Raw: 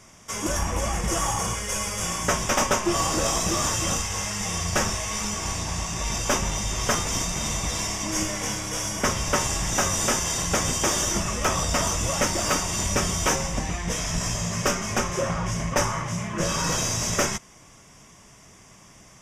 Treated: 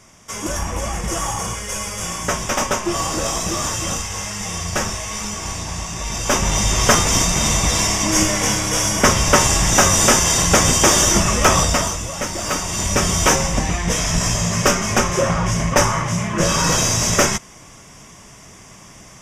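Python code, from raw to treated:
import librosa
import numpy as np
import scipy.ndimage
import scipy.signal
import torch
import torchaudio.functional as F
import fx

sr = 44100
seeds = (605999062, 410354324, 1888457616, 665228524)

y = fx.gain(x, sr, db=fx.line((6.11, 2.0), (6.6, 10.0), (11.59, 10.0), (12.1, -2.5), (13.18, 8.0)))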